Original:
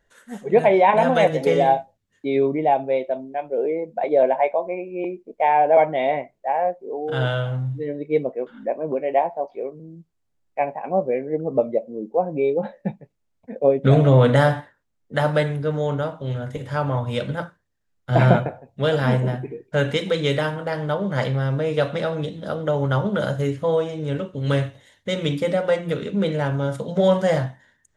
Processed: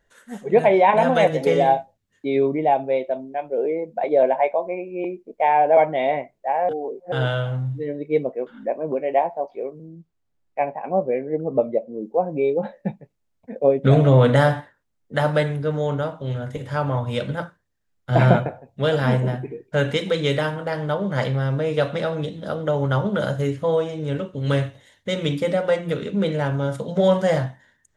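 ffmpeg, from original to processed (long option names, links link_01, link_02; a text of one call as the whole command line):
ffmpeg -i in.wav -filter_complex "[0:a]asettb=1/sr,asplit=3[link_01][link_02][link_03];[link_01]atrim=end=9.884[link_04];[link_02]atrim=start=9.88:end=12.01,asetpts=PTS-STARTPTS,afade=type=in:duration=0.004:curve=qsin,afade=type=out:start_time=2.126:duration=0.004:curve=qsin,highshelf=frequency=6600:gain=-9[link_05];[link_03]atrim=start=12.006[link_06];[link_04][link_05]acrossfade=duration=0.004:curve1=hsin:curve2=qsin[link_07];[link_07][link_06]acrossfade=duration=0.004:curve1=qsin:curve2=hsin,asplit=3[link_08][link_09][link_10];[link_08]atrim=end=6.692[link_11];[link_09]atrim=start=6.688:end=7.122,asetpts=PTS-STARTPTS,areverse[link_12];[link_10]atrim=start=7.118[link_13];[link_11][link_12]acrossfade=duration=0.004:curve1=hsin:curve2=hsin[link_14];[link_14][link_13]acrossfade=duration=0.004:curve1=hsin:curve2=hsin" out.wav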